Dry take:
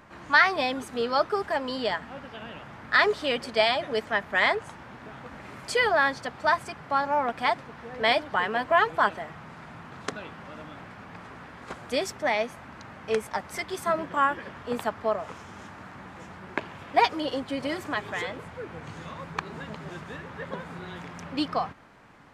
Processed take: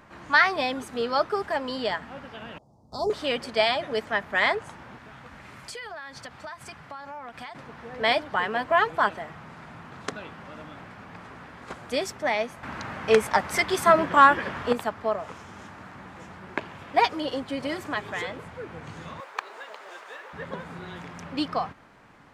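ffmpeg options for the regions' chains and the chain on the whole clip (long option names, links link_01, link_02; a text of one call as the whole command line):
ffmpeg -i in.wav -filter_complex "[0:a]asettb=1/sr,asplit=3[link_01][link_02][link_03];[link_01]atrim=end=2.584[link_04];[link_02]atrim=start=2.58:end=3.1,asetpts=PTS-STARTPTS,afade=type=in:duration=0.004:curve=qsin,afade=type=out:start_time=0.516:duration=0.004:curve=qsin,agate=range=-13dB:threshold=-40dB:ratio=16:release=100:detection=peak,asuperstop=centerf=2100:order=8:qfactor=0.51,asubboost=boost=8.5:cutoff=210[link_05];[link_03]atrim=start=3.096[link_06];[link_04][link_05]acrossfade=duration=0.004:curve1=hsin:curve2=qsin[link_07];[link_07][link_06]acrossfade=duration=0.004:curve1=qsin:curve2=hsin,asettb=1/sr,asplit=3[link_08][link_09][link_10];[link_08]atrim=end=4.984[link_11];[link_09]atrim=start=4.98:end=7.55,asetpts=PTS-STARTPTS,afade=type=in:duration=0.004:curve=qsin,afade=type=out:start_time=2.566:duration=0.004:curve=qsin,equalizer=frequency=400:width_type=o:width=2.6:gain=-6.5,acompressor=threshold=-35dB:ratio=10:attack=3.2:release=140:knee=1:detection=peak[link_12];[link_10]atrim=start=7.546[link_13];[link_11][link_12]acrossfade=duration=0.004:curve1=hsin:curve2=qsin[link_14];[link_14][link_13]acrossfade=duration=0.004:curve1=qsin:curve2=hsin,asettb=1/sr,asplit=3[link_15][link_16][link_17];[link_15]atrim=end=12.634[link_18];[link_16]atrim=start=12.63:end=14.73,asetpts=PTS-STARTPTS,afade=type=in:duration=0.004:curve=qsin,afade=type=out:start_time=2.096:duration=0.004:curve=qsin,equalizer=frequency=1800:width_type=o:width=2.7:gain=2.5,acontrast=85[link_19];[link_17]atrim=start=14.726[link_20];[link_18][link_19]acrossfade=duration=0.004:curve1=hsin:curve2=qsin[link_21];[link_21][link_20]acrossfade=duration=0.004:curve1=qsin:curve2=hsin,asettb=1/sr,asplit=3[link_22][link_23][link_24];[link_22]atrim=end=19.204[link_25];[link_23]atrim=start=19.2:end=20.33,asetpts=PTS-STARTPTS,afade=type=in:duration=0.004:curve=qsin,afade=type=out:start_time=1.126:duration=0.004:curve=qsin,highpass=frequency=470:width=0.5412,highpass=frequency=470:width=1.3066,acrusher=bits=9:mode=log:mix=0:aa=0.000001[link_26];[link_24]atrim=start=20.326[link_27];[link_25][link_26]acrossfade=duration=0.004:curve1=hsin:curve2=qsin[link_28];[link_28][link_27]acrossfade=duration=0.004:curve1=qsin:curve2=hsin" out.wav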